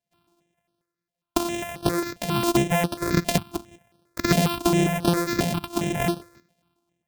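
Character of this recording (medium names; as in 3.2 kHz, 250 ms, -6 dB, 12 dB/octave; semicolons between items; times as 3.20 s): a buzz of ramps at a fixed pitch in blocks of 128 samples; random-step tremolo; notches that jump at a steady rate 7.4 Hz 330–7100 Hz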